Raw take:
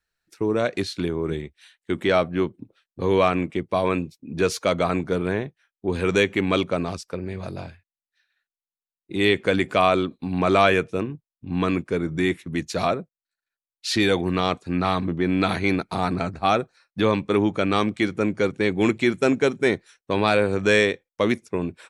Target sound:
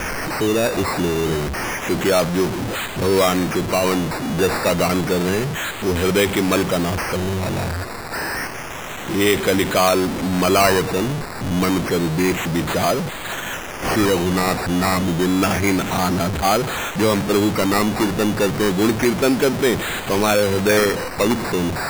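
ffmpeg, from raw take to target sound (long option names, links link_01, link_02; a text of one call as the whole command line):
ffmpeg -i in.wav -af "aeval=exprs='val(0)+0.5*0.119*sgn(val(0))':channel_layout=same,acrusher=samples=11:mix=1:aa=0.000001:lfo=1:lforange=6.6:lforate=0.29" out.wav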